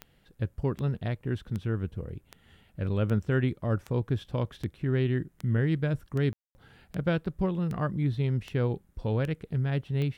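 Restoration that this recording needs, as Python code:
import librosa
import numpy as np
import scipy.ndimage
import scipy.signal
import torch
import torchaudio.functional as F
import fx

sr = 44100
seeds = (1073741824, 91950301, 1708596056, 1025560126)

y = fx.fix_declick_ar(x, sr, threshold=10.0)
y = fx.fix_ambience(y, sr, seeds[0], print_start_s=2.24, print_end_s=2.74, start_s=6.33, end_s=6.55)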